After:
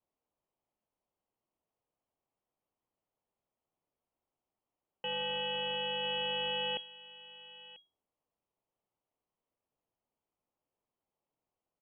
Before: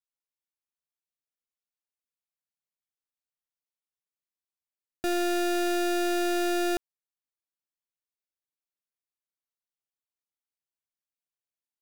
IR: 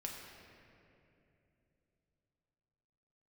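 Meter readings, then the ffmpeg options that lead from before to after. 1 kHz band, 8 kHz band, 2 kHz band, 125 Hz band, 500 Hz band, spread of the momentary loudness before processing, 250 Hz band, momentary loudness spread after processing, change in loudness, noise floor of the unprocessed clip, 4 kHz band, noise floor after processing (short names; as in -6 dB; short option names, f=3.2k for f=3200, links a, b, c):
-8.0 dB, under -40 dB, -5.5 dB, n/a, -10.0 dB, 4 LU, -24.5 dB, 17 LU, -6.5 dB, under -85 dBFS, +5.0 dB, under -85 dBFS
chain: -filter_complex "[0:a]alimiter=level_in=13.5dB:limit=-24dB:level=0:latency=1,volume=-13.5dB,aexciter=amount=8:drive=9.1:freq=2.6k,asplit=2[a][b];[b]adelay=991.3,volume=-15dB,highshelf=f=4k:g=-22.3[c];[a][c]amix=inputs=2:normalize=0,lowpass=f=2.8k:t=q:w=0.5098,lowpass=f=2.8k:t=q:w=0.6013,lowpass=f=2.8k:t=q:w=0.9,lowpass=f=2.8k:t=q:w=2.563,afreqshift=-3300"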